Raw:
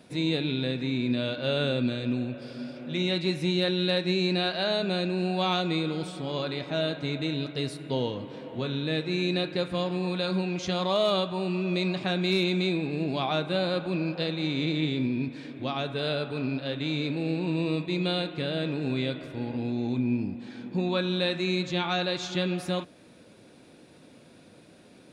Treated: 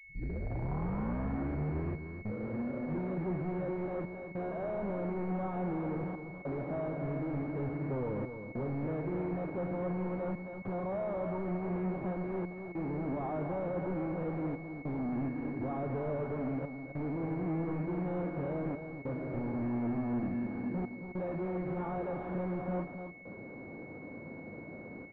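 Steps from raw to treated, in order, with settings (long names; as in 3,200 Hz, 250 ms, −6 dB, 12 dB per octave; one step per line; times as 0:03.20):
turntable start at the beginning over 2.70 s
in parallel at +2 dB: downward compressor, threshold −39 dBFS, peak gain reduction 16.5 dB
on the sum: soft clipping −30 dBFS, distortion −7 dB
gate pattern ".xxxxxxxxxxxx." 100 BPM −24 dB
hard clipping −33 dBFS, distortion −17 dB
on a send: repeating echo 268 ms, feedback 17%, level −8 dB
on the sum: switching amplifier with a slow clock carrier 2,200 Hz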